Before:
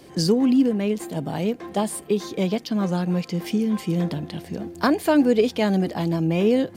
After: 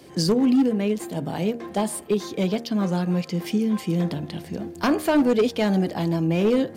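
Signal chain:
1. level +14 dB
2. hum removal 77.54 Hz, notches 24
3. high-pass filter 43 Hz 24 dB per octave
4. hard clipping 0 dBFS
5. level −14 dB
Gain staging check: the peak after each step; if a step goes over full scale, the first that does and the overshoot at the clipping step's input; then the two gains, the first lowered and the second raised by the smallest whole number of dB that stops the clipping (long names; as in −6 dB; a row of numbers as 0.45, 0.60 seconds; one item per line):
+8.5, +7.5, +8.5, 0.0, −14.0 dBFS
step 1, 8.5 dB
step 1 +5 dB, step 5 −5 dB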